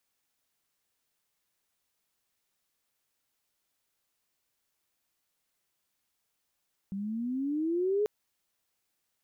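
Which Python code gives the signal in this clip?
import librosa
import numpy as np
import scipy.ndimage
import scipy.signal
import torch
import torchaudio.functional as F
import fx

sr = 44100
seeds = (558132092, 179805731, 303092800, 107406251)

y = fx.riser_tone(sr, length_s=1.14, level_db=-24, wave='sine', hz=191.0, rise_st=14.0, swell_db=8.5)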